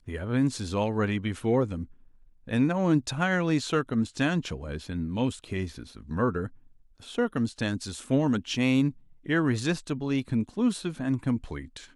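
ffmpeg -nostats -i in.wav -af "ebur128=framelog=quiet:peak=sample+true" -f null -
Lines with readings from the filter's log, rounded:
Integrated loudness:
  I:         -28.1 LUFS
  Threshold: -38.6 LUFS
Loudness range:
  LRA:         4.1 LU
  Threshold: -48.5 LUFS
  LRA low:   -31.5 LUFS
  LRA high:  -27.4 LUFS
Sample peak:
  Peak:      -11.6 dBFS
True peak:
  Peak:      -11.6 dBFS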